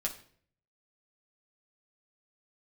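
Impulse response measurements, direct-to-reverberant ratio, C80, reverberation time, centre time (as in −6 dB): −1.5 dB, 16.0 dB, 0.55 s, 13 ms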